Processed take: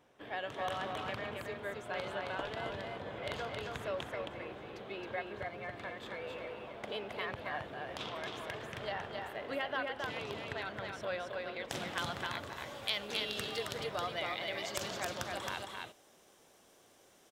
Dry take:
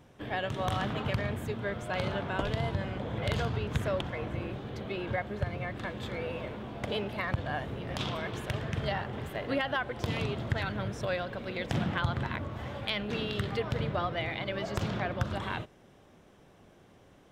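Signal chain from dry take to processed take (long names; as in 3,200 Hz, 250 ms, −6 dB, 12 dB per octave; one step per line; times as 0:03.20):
bass and treble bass −14 dB, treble −2 dB, from 0:11.70 treble +14 dB
single-tap delay 269 ms −3.5 dB
level −5.5 dB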